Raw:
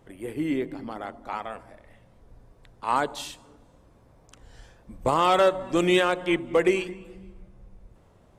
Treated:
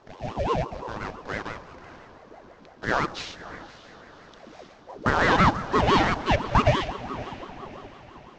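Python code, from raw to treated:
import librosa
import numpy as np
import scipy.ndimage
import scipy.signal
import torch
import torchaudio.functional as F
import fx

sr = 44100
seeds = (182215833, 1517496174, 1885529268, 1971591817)

p1 = fx.cvsd(x, sr, bps=32000)
p2 = p1 + fx.echo_diffused(p1, sr, ms=557, feedback_pct=47, wet_db=-15.0, dry=0)
p3 = fx.ring_lfo(p2, sr, carrier_hz=500.0, swing_pct=55, hz=5.9)
y = p3 * librosa.db_to_amplitude(4.5)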